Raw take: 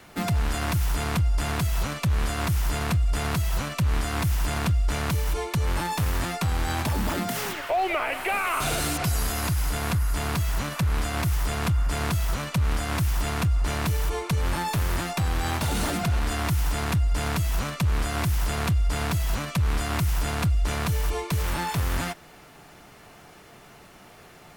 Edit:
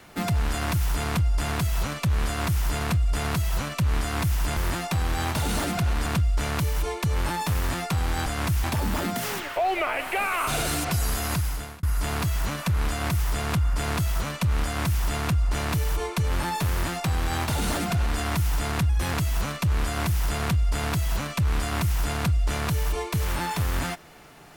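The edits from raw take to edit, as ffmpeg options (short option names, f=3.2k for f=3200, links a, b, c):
-filter_complex "[0:a]asplit=8[a][b][c][d][e][f][g][h];[a]atrim=end=4.572[i];[b]atrim=start=14.828:end=16.322[j];[c]atrim=start=4.568:end=6.772[k];[d]atrim=start=12.768:end=13.152[l];[e]atrim=start=6.768:end=9.96,asetpts=PTS-STARTPTS,afade=t=out:st=2.742:d=0.45[m];[f]atrim=start=9.96:end=17.024,asetpts=PTS-STARTPTS,afade=t=in:d=0.004:c=hsin[n];[g]atrim=start=17.02:end=17.31,asetpts=PTS-STARTPTS,asetrate=52920,aresample=44100[o];[h]atrim=start=17.306[p];[i][j]acrossfade=d=0.004:c1=hsin:c2=hsin[q];[q][k]acrossfade=d=0.004:c1=hsin:c2=hsin[r];[r][l]acrossfade=d=0.004:c1=hsin:c2=hsin[s];[m][n]concat=n=2:v=0:a=1[t];[s][t]acrossfade=d=0.004:c1=hsin:c2=hsin[u];[u][o]acrossfade=d=0.004:c1=hsin:c2=hsin[v];[v][p]acrossfade=d=0.004:c1=hsin:c2=hsin"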